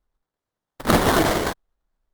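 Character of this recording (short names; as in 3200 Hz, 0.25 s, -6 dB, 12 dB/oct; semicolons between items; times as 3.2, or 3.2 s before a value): phasing stages 4, 0.98 Hz, lowest notch 610–1500 Hz; aliases and images of a low sample rate 2600 Hz, jitter 20%; tremolo saw down 8.9 Hz, depth 35%; Opus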